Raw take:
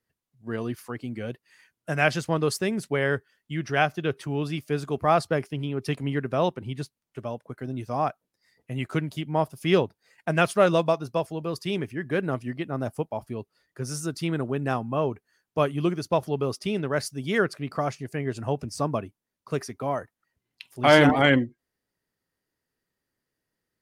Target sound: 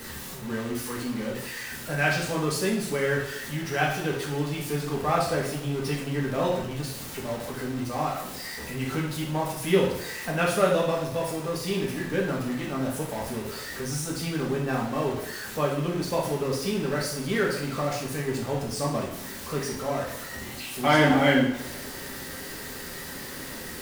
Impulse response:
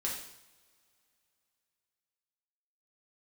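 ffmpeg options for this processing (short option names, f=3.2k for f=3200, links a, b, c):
-filter_complex "[0:a]aeval=exprs='val(0)+0.5*0.0376*sgn(val(0))':c=same[a];[1:a]atrim=start_sample=2205[b];[a][b]afir=irnorm=-1:irlink=0,volume=-5.5dB"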